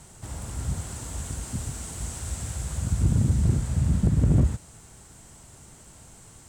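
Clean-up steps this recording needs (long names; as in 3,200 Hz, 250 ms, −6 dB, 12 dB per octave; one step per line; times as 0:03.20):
clipped peaks rebuilt −14 dBFS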